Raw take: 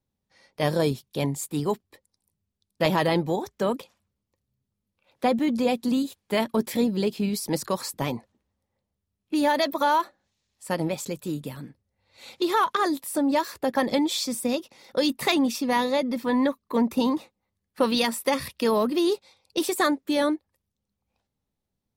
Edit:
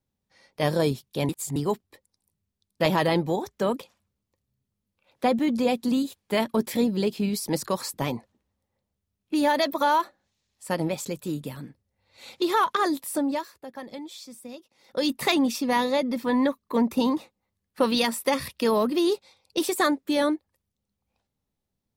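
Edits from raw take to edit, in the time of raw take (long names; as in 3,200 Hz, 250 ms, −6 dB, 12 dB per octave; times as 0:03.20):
0:01.29–0:01.56: reverse
0:13.13–0:15.13: duck −15 dB, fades 0.40 s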